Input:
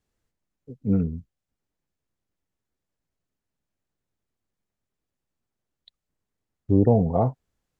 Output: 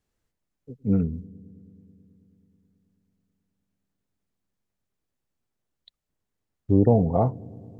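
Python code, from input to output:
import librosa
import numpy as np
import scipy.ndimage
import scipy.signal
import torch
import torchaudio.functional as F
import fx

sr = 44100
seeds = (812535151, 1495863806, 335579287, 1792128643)

y = fx.echo_wet_lowpass(x, sr, ms=108, feedback_pct=82, hz=420.0, wet_db=-22)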